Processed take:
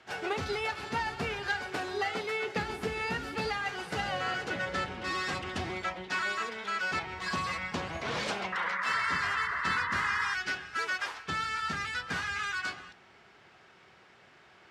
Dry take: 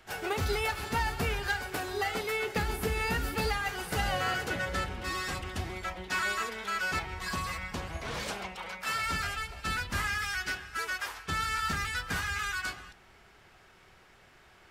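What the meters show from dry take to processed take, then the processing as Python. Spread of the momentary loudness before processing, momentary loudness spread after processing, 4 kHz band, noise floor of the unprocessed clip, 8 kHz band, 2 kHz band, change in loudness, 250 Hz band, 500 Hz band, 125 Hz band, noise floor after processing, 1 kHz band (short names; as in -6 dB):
6 LU, 5 LU, -1.0 dB, -59 dBFS, -5.5 dB, +1.0 dB, 0.0 dB, -0.5 dB, -0.5 dB, -5.5 dB, -59 dBFS, +1.0 dB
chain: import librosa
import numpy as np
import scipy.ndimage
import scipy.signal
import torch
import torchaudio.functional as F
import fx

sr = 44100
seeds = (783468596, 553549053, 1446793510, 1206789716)

y = fx.rider(x, sr, range_db=4, speed_s=0.5)
y = fx.spec_paint(y, sr, seeds[0], shape='noise', start_s=8.52, length_s=1.82, low_hz=940.0, high_hz=2100.0, level_db=-33.0)
y = fx.bandpass_edges(y, sr, low_hz=130.0, high_hz=5700.0)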